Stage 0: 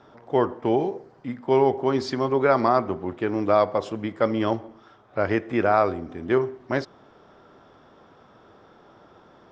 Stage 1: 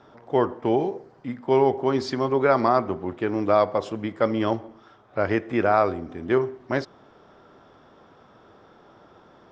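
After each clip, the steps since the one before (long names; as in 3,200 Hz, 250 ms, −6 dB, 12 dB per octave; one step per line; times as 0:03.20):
no processing that can be heard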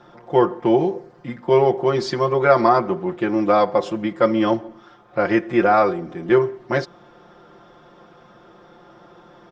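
comb filter 5.7 ms, depth 85%
level +2.5 dB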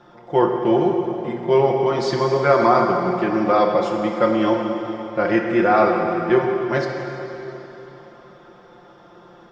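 dense smooth reverb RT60 3.5 s, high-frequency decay 0.9×, DRR 1.5 dB
level −1.5 dB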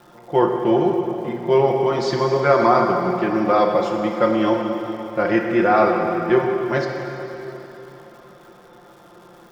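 surface crackle 380 per second −44 dBFS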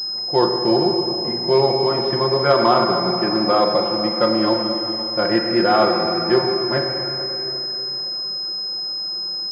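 switching amplifier with a slow clock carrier 5,100 Hz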